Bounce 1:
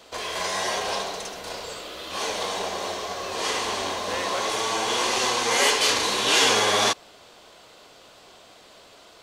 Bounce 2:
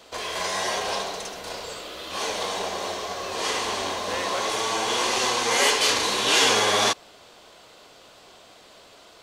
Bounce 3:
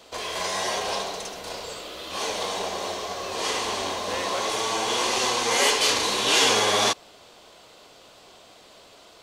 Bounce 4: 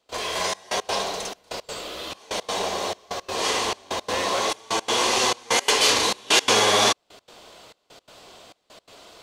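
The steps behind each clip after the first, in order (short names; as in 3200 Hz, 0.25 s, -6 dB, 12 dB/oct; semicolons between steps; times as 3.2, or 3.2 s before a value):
nothing audible
bell 1600 Hz -2.5 dB
step gate ".xxxxx..x" 169 bpm -24 dB; gain +3 dB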